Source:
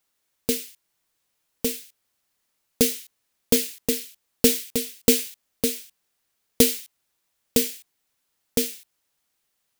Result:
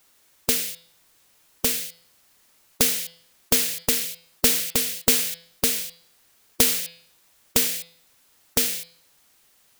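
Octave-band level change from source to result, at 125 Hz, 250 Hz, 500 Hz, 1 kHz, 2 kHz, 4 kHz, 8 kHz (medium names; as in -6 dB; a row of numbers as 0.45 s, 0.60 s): -0.5 dB, -7.0 dB, -6.5 dB, +8.5 dB, +5.5 dB, +3.5 dB, +3.5 dB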